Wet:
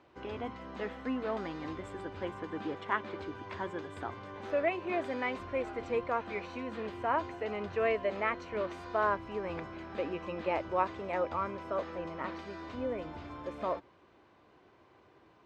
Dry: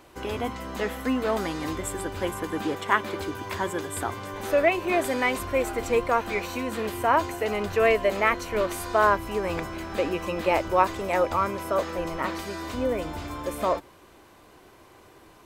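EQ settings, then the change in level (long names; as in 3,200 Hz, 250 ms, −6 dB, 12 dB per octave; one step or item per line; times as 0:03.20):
high-pass filter 75 Hz
high-frequency loss of the air 180 metres
high-shelf EQ 12,000 Hz −6 dB
−8.5 dB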